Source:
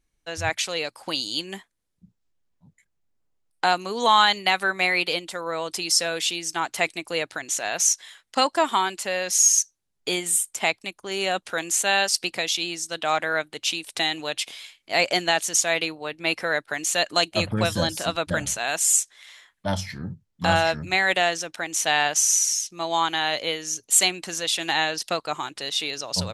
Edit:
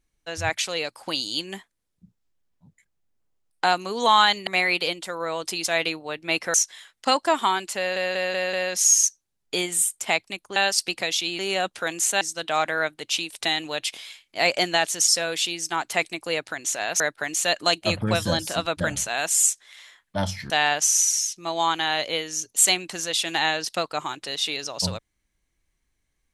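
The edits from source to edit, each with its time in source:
0:04.47–0:04.73: remove
0:05.92–0:07.84: swap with 0:15.62–0:16.50
0:09.07: stutter 0.19 s, 5 plays
0:11.10–0:11.92: move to 0:12.75
0:20.00–0:21.84: remove

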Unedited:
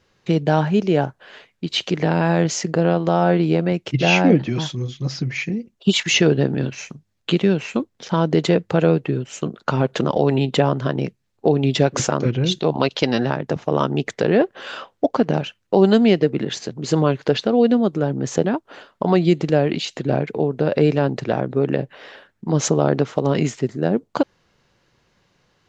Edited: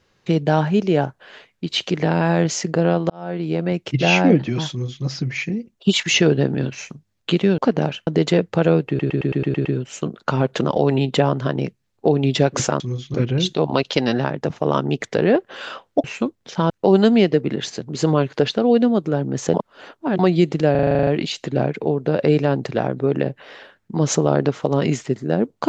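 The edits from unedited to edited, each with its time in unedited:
0:03.10–0:03.80: fade in
0:04.70–0:05.04: duplicate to 0:12.20
0:07.58–0:08.24: swap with 0:15.10–0:15.59
0:09.05: stutter 0.11 s, 8 plays
0:18.43–0:19.08: reverse
0:19.60: stutter 0.04 s, 10 plays

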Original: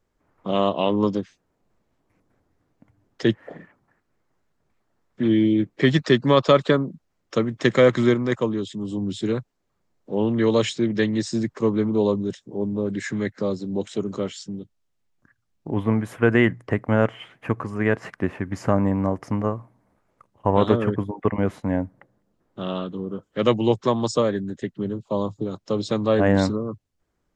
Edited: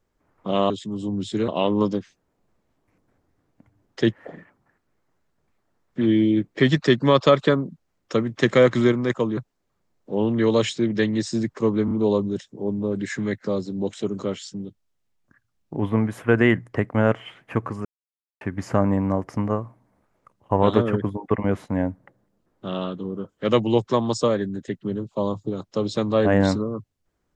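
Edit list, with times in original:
0:08.59–0:09.37: move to 0:00.70
0:11.85: stutter 0.03 s, 3 plays
0:17.79–0:18.35: silence

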